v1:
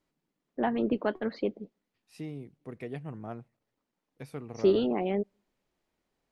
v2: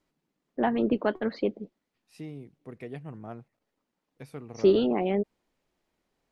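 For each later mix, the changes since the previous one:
first voice +3.5 dB
reverb: off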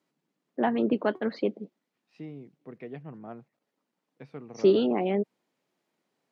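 second voice: add high-frequency loss of the air 210 metres
master: add high-pass filter 140 Hz 24 dB per octave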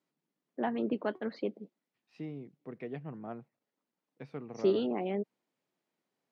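first voice −7.0 dB

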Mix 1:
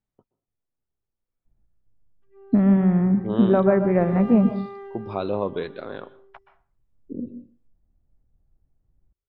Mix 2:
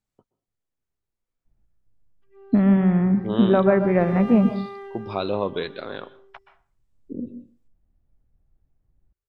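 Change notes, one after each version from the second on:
master: add high-shelf EQ 2,400 Hz +11.5 dB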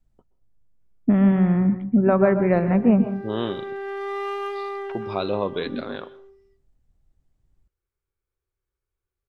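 first voice: entry −1.45 s
background +6.5 dB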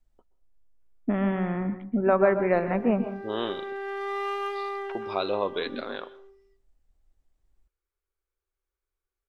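master: add parametric band 130 Hz −14.5 dB 1.8 octaves

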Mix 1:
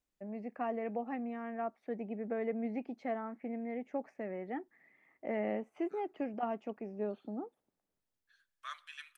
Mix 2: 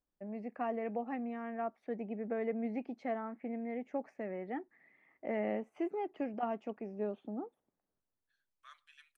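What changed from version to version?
second voice −10.5 dB
reverb: off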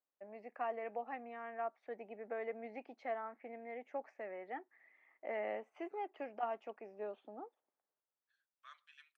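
first voice: add high-pass filter 590 Hz 12 dB per octave
master: add high-frequency loss of the air 75 metres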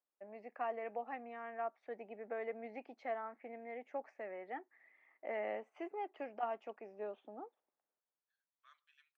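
second voice −8.5 dB

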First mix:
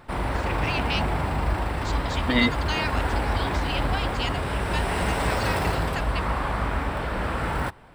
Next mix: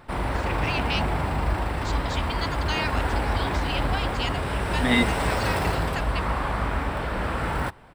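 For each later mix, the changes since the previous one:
second voice: entry +2.55 s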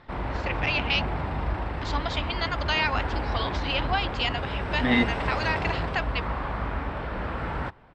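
first voice +6.5 dB
background −3.5 dB
master: add high-frequency loss of the air 160 metres

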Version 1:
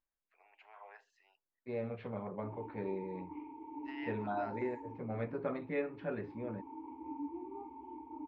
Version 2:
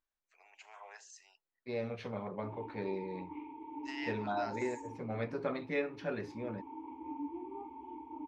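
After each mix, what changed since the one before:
master: remove high-frequency loss of the air 460 metres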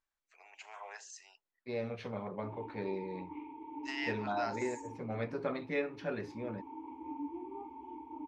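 first voice +4.5 dB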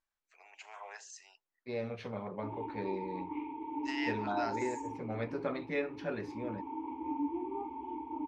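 background +6.0 dB

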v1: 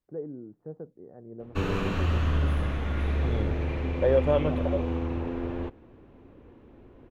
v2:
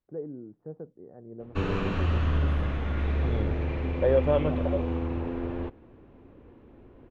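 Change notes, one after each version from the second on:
master: add high-frequency loss of the air 95 metres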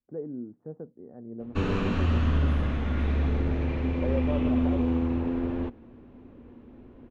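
second voice −9.5 dB
background: add bass and treble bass +1 dB, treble +4 dB
master: add parametric band 240 Hz +10 dB 0.24 octaves

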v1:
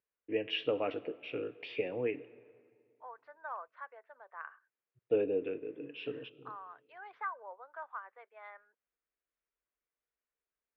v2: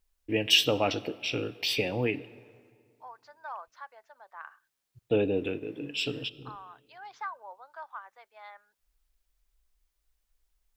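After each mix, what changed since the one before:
first voice +7.0 dB
master: remove loudspeaker in its box 180–2,400 Hz, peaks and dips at 210 Hz −5 dB, 460 Hz +6 dB, 830 Hz −6 dB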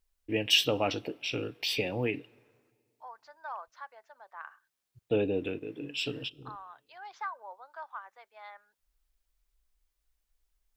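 first voice: send −11.5 dB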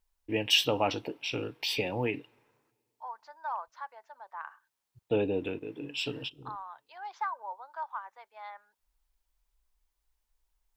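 first voice: send −6.5 dB
master: add parametric band 920 Hz +8 dB 0.42 octaves

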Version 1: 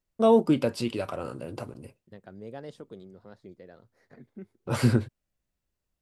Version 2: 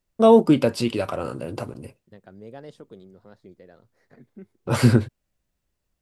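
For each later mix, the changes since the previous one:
first voice +6.0 dB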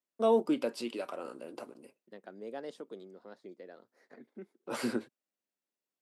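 first voice −12.0 dB
master: add high-pass filter 240 Hz 24 dB per octave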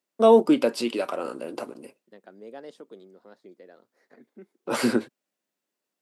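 first voice +10.5 dB

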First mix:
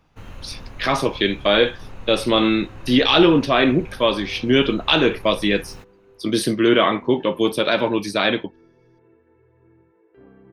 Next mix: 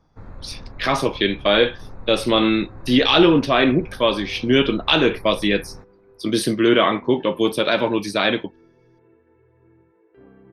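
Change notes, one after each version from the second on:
first sound: add moving average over 15 samples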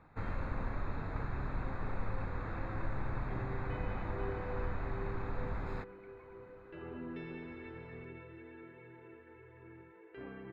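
speech: muted
master: add parametric band 2,400 Hz +10 dB 2.1 octaves

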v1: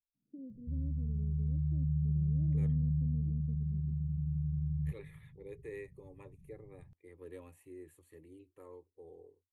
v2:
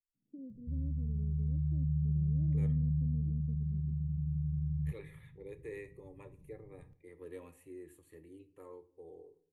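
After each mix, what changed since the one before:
second voice: send on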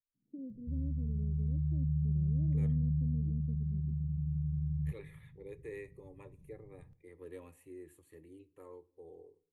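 first voice +3.0 dB
second voice: send −6.0 dB

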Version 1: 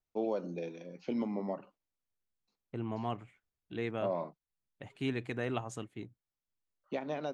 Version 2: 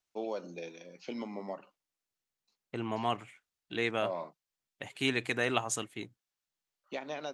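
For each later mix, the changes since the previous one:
second voice +7.0 dB
master: add spectral tilt +3 dB per octave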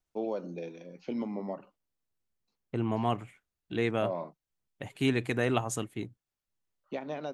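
second voice: remove high-frequency loss of the air 64 metres
master: add spectral tilt −3 dB per octave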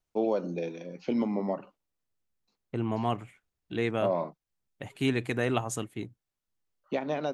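first voice +6.0 dB

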